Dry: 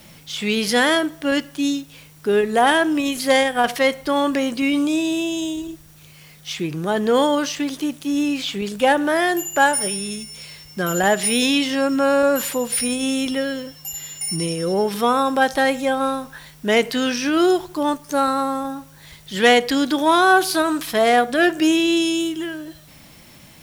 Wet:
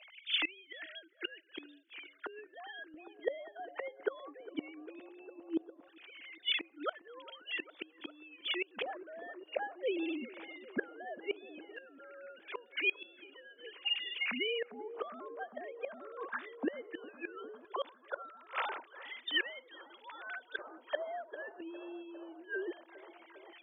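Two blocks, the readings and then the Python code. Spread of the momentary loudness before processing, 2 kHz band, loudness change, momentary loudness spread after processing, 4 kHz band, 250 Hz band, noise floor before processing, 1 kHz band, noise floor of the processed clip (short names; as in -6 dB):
13 LU, -17.5 dB, -20.5 dB, 17 LU, -14.5 dB, -25.5 dB, -46 dBFS, -25.5 dB, -63 dBFS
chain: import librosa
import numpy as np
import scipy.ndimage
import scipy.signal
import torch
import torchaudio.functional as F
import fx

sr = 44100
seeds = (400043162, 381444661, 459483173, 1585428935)

y = fx.sine_speech(x, sr)
y = fx.gate_flip(y, sr, shuts_db=-19.0, range_db=-29)
y = fx.echo_bbd(y, sr, ms=403, stages=4096, feedback_pct=85, wet_db=-19)
y = fx.filter_lfo_bandpass(y, sr, shape='square', hz=0.17, low_hz=890.0, high_hz=2400.0, q=0.89)
y = F.gain(torch.from_numpy(y), 3.5).numpy()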